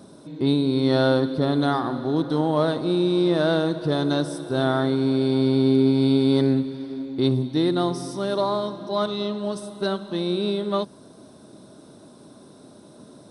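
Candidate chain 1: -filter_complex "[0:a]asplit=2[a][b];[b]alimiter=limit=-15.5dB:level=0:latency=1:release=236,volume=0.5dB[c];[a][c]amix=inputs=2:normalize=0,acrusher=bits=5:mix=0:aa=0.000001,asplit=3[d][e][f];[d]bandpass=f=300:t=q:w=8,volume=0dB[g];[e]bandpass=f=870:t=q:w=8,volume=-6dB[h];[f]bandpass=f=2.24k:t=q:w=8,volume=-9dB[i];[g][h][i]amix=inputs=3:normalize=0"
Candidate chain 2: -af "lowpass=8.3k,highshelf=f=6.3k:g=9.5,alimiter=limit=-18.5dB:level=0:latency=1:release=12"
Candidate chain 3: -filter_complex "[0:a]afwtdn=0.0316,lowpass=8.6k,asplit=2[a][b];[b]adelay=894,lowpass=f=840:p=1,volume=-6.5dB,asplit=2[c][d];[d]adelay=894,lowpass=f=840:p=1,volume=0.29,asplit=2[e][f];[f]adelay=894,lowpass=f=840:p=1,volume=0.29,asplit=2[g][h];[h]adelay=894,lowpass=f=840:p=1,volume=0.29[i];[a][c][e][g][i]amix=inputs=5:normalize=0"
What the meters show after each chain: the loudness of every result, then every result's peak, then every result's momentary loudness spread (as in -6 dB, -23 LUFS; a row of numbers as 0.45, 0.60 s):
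-25.5, -28.0, -22.5 LUFS; -12.0, -18.5, -8.5 dBFS; 15, 21, 9 LU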